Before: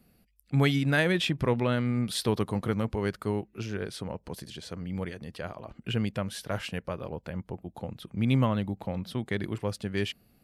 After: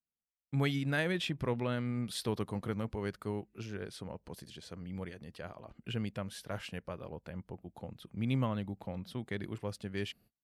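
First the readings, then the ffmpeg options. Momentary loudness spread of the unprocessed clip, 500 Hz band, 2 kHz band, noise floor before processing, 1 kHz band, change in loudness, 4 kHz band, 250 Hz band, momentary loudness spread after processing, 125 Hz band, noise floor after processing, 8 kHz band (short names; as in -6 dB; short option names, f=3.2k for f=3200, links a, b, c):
15 LU, -7.5 dB, -7.5 dB, -66 dBFS, -7.5 dB, -7.5 dB, -7.5 dB, -7.5 dB, 15 LU, -7.5 dB, under -85 dBFS, -7.5 dB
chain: -af "agate=range=-34dB:threshold=-53dB:ratio=16:detection=peak,volume=-7.5dB"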